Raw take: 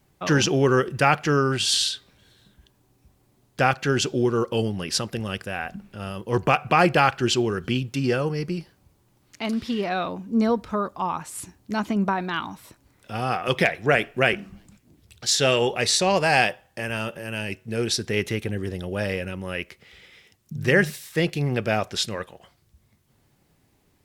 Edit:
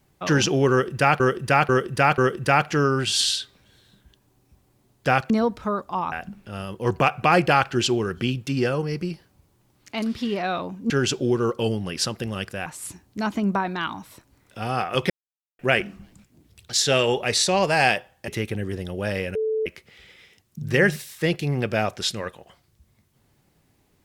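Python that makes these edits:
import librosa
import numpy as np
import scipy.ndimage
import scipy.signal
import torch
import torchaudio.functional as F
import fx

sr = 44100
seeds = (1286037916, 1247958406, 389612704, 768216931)

y = fx.edit(x, sr, fx.repeat(start_s=0.71, length_s=0.49, count=4),
    fx.swap(start_s=3.83, length_s=1.76, other_s=10.37, other_length_s=0.82),
    fx.silence(start_s=13.63, length_s=0.49),
    fx.cut(start_s=16.81, length_s=1.41),
    fx.bleep(start_s=19.29, length_s=0.31, hz=438.0, db=-21.0), tone=tone)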